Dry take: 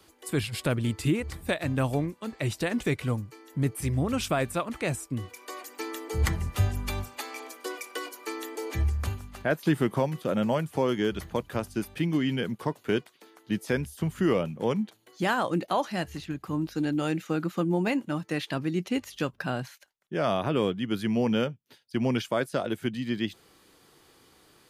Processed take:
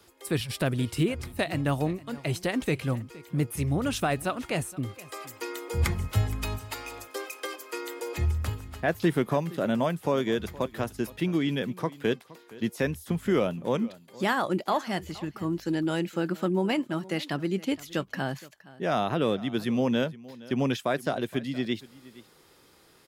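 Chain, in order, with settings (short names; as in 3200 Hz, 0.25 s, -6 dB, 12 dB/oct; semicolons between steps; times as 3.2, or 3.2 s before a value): varispeed +7%; echo 0.468 s -20 dB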